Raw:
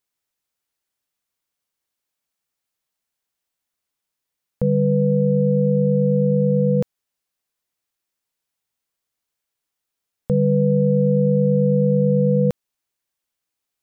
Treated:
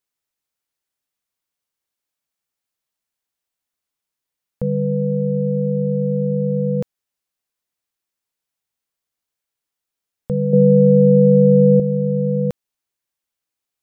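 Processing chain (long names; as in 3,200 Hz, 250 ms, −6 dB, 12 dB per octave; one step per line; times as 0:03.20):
0:10.53–0:11.80: parametric band 330 Hz +11 dB 2.4 octaves
level −2 dB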